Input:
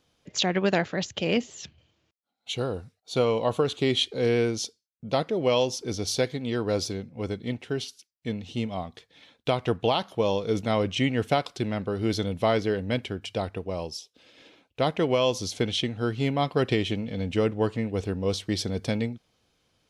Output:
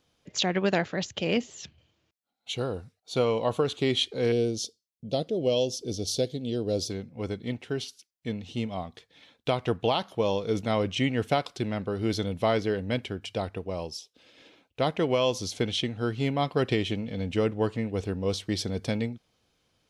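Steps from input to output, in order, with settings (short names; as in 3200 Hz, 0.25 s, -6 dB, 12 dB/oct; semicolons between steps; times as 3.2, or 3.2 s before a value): 4.32–6.9 band shelf 1400 Hz -15.5 dB; gain -1.5 dB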